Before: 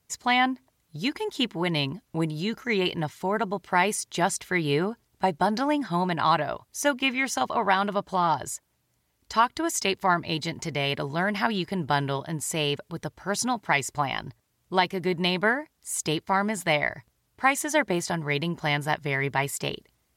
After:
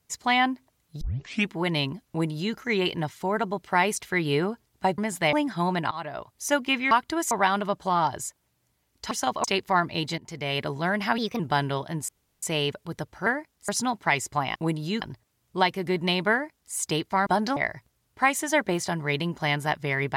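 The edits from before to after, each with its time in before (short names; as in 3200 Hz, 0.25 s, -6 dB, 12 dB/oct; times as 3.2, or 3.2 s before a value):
1.01 tape start 0.49 s
2.09–2.55 copy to 14.18
3.96–4.35 cut
5.37–5.67 swap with 16.43–16.78
6.25–6.7 fade in, from -23 dB
7.25–7.58 swap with 9.38–9.78
10.52–10.95 fade in, from -13.5 dB
11.52–11.78 speed 121%
12.47 insert room tone 0.34 s
15.48–15.9 copy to 13.31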